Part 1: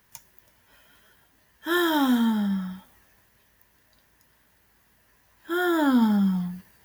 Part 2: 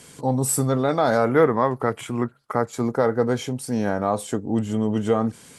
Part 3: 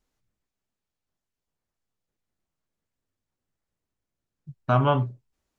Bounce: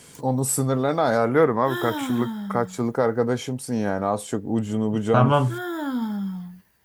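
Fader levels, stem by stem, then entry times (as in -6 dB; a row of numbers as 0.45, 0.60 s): -6.5, -1.0, +2.5 dB; 0.00, 0.00, 0.45 s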